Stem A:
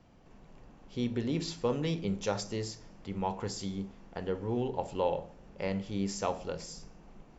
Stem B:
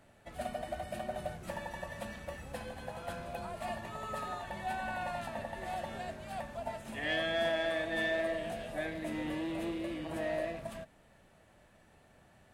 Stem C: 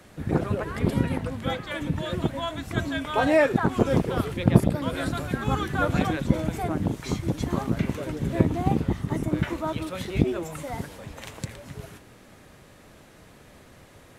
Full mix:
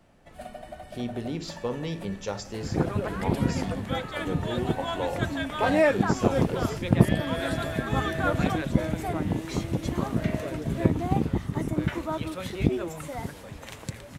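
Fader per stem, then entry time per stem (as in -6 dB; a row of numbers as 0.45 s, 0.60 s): -0.5 dB, -2.5 dB, -1.5 dB; 0.00 s, 0.00 s, 2.45 s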